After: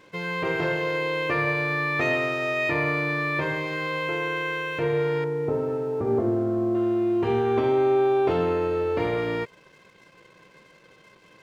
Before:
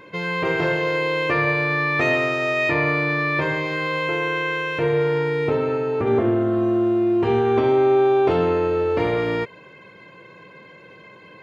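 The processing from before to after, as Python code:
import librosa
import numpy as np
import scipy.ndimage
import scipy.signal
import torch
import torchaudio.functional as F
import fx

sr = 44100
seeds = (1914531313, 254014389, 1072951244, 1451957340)

y = fx.lowpass(x, sr, hz=1000.0, slope=12, at=(5.24, 6.75))
y = np.sign(y) * np.maximum(np.abs(y) - 10.0 ** (-49.5 / 20.0), 0.0)
y = y * librosa.db_to_amplitude(-4.0)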